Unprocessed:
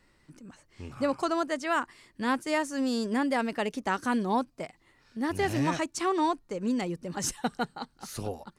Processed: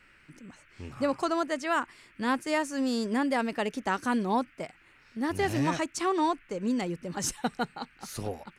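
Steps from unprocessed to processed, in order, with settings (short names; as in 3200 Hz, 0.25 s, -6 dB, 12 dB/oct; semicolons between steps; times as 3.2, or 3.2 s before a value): band noise 1300–2700 Hz -61 dBFS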